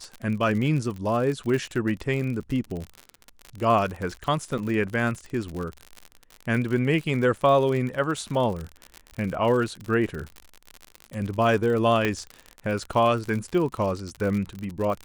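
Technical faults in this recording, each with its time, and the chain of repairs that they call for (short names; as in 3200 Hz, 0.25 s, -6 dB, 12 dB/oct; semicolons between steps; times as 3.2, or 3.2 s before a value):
crackle 60/s -29 dBFS
4.58 gap 3.2 ms
12.05 pop -11 dBFS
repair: de-click; interpolate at 4.58, 3.2 ms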